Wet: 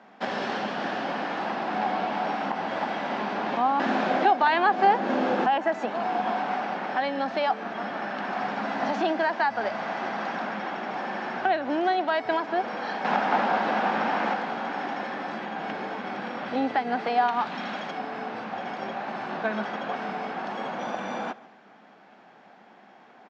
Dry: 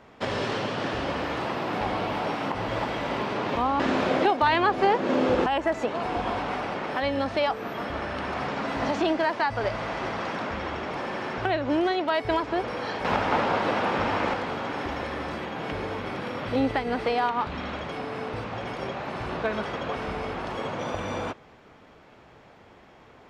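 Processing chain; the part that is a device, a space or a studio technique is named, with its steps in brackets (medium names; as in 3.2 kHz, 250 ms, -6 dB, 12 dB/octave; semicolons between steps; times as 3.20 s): high-pass 180 Hz 6 dB/octave; television speaker (cabinet simulation 160–6700 Hz, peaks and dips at 210 Hz +9 dB, 460 Hz -3 dB, 760 Hz +9 dB, 1.6 kHz +6 dB); 17.28–17.91 s: treble shelf 3.3 kHz +8.5 dB; echo from a far wall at 25 m, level -20 dB; trim -3 dB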